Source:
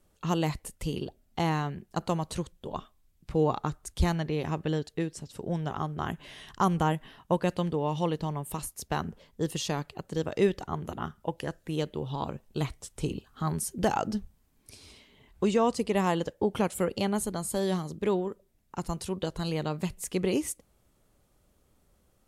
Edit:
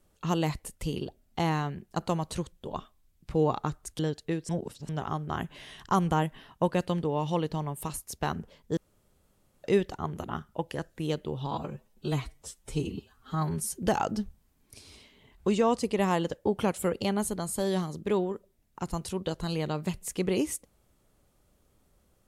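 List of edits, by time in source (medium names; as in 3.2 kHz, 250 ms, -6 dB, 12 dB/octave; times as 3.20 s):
3.99–4.68 s: delete
5.18–5.58 s: reverse
9.46–10.33 s: room tone
12.20–13.66 s: stretch 1.5×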